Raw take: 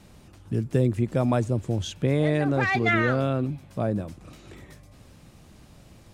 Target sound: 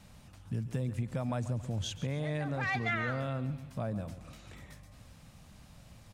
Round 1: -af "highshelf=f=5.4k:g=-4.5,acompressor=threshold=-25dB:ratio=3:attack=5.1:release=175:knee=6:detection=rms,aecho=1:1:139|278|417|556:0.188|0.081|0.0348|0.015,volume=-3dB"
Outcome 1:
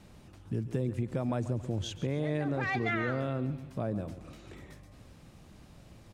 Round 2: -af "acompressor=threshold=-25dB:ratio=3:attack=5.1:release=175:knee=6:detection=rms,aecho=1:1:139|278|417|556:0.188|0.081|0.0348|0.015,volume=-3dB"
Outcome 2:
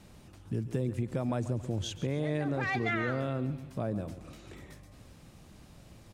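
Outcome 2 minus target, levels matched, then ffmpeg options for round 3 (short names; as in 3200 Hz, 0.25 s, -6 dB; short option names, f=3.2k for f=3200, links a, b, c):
500 Hz band +2.5 dB
-af "acompressor=threshold=-25dB:ratio=3:attack=5.1:release=175:knee=6:detection=rms,equalizer=f=360:w=2:g=-11.5,aecho=1:1:139|278|417|556:0.188|0.081|0.0348|0.015,volume=-3dB"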